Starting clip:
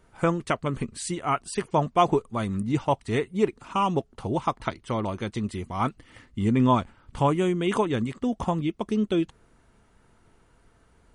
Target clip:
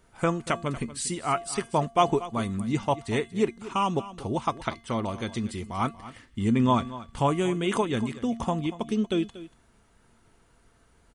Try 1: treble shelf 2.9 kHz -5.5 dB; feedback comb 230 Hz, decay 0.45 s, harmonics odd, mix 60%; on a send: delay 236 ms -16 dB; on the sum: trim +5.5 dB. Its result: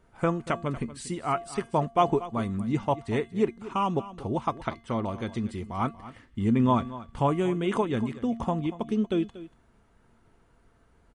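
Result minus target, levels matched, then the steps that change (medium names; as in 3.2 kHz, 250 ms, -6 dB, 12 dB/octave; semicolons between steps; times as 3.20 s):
8 kHz band -9.0 dB
change: treble shelf 2.9 kHz +5.5 dB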